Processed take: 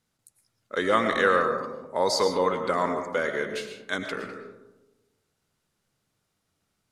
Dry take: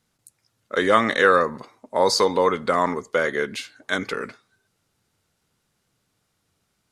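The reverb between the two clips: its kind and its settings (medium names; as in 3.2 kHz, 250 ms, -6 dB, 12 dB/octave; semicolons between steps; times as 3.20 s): algorithmic reverb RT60 1.1 s, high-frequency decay 0.3×, pre-delay 75 ms, DRR 6 dB; trim -5.5 dB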